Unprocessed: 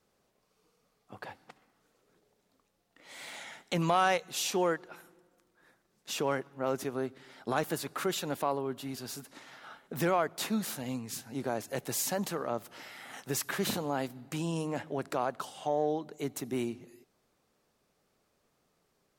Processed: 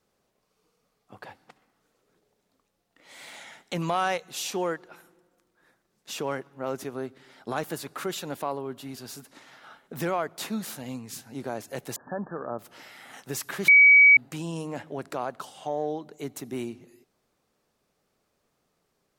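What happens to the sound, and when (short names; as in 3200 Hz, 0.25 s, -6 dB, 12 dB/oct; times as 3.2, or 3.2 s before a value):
11.96–12.59 brick-wall FIR low-pass 1800 Hz
13.68–14.17 bleep 2270 Hz -11 dBFS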